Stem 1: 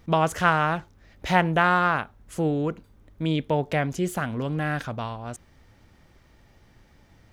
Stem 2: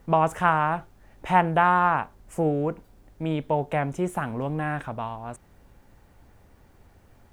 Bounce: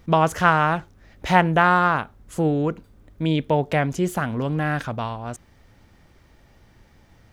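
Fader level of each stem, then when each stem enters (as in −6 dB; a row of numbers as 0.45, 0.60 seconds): +1.5, −8.0 decibels; 0.00, 0.00 seconds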